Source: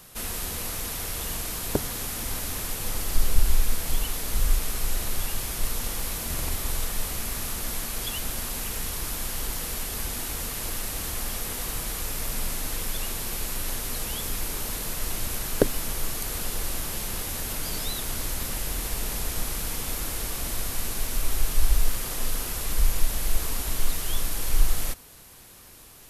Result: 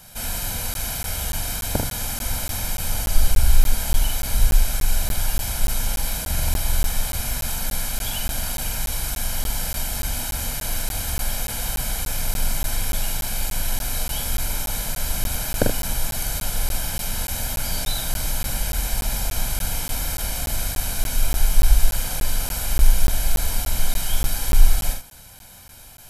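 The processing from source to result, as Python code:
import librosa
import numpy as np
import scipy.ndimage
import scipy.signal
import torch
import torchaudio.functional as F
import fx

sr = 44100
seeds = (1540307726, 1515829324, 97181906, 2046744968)

y = x + 0.66 * np.pad(x, (int(1.3 * sr / 1000.0), 0))[:len(x)]
y = fx.room_early_taps(y, sr, ms=(44, 77), db=(-4.5, -9.0))
y = fx.buffer_crackle(y, sr, first_s=0.74, period_s=0.29, block=512, kind='zero')
y = y * 10.0 ** (1.0 / 20.0)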